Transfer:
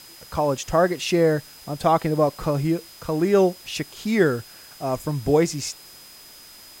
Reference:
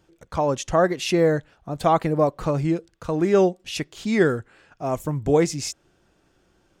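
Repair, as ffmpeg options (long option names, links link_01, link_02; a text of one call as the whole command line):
ffmpeg -i in.wav -af "bandreject=frequency=5000:width=30,afwtdn=0.005" out.wav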